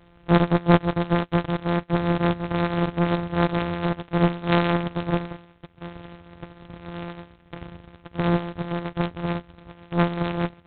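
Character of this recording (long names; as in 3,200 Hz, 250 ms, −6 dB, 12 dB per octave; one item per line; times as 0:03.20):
a buzz of ramps at a fixed pitch in blocks of 256 samples
G.726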